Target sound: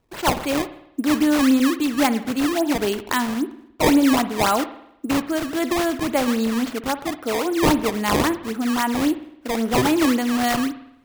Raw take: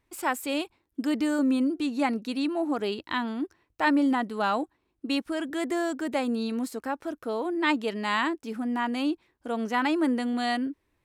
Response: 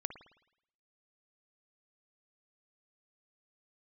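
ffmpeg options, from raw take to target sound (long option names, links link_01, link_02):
-filter_complex "[0:a]acrusher=samples=18:mix=1:aa=0.000001:lfo=1:lforange=28.8:lforate=3.7,asplit=2[link_01][link_02];[1:a]atrim=start_sample=2205[link_03];[link_02][link_03]afir=irnorm=-1:irlink=0,volume=3dB[link_04];[link_01][link_04]amix=inputs=2:normalize=0"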